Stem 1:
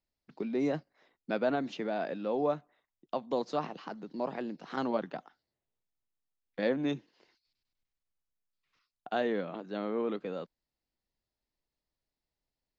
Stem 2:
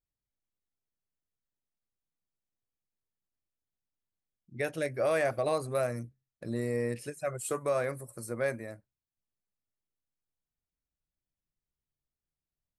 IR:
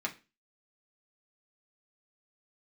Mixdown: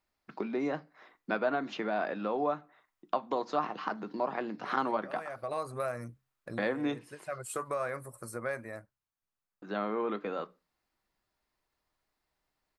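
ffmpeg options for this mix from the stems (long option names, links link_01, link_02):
-filter_complex "[0:a]acompressor=threshold=-42dB:ratio=2,volume=2dB,asplit=3[link_01][link_02][link_03];[link_01]atrim=end=8.64,asetpts=PTS-STARTPTS,afade=type=out:start_time=8.636:duration=0.004:curve=hsin[link_04];[link_02]atrim=start=8.64:end=9.62,asetpts=PTS-STARTPTS,volume=0[link_05];[link_03]atrim=start=9.62,asetpts=PTS-STARTPTS,afade=type=in:duration=0.004:curve=hsin[link_06];[link_04][link_05][link_06]concat=n=3:v=0:a=1,asplit=3[link_07][link_08][link_09];[link_08]volume=-9.5dB[link_10];[1:a]acompressor=threshold=-35dB:ratio=2.5,adelay=50,volume=-2.5dB,afade=type=in:start_time=4.71:duration=0.76:silence=0.316228[link_11];[link_09]apad=whole_len=566027[link_12];[link_11][link_12]sidechaincompress=threshold=-46dB:ratio=5:attack=38:release=591[link_13];[2:a]atrim=start_sample=2205[link_14];[link_10][link_14]afir=irnorm=-1:irlink=0[link_15];[link_07][link_13][link_15]amix=inputs=3:normalize=0,equalizer=frequency=1200:width=0.92:gain=10"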